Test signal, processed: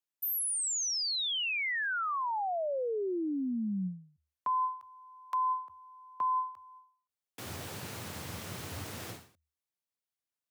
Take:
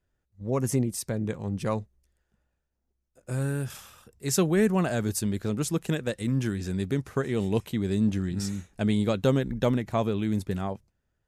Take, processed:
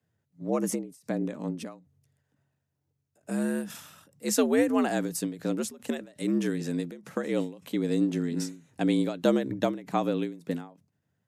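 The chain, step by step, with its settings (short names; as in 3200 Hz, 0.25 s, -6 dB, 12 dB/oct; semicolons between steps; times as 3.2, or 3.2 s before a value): frequency shift +75 Hz; ending taper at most 130 dB/s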